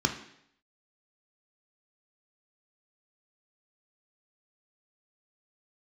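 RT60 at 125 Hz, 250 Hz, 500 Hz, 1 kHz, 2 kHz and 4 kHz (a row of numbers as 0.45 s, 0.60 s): 0.70 s, 0.70 s, 0.70 s, 0.70 s, 0.70 s, 0.70 s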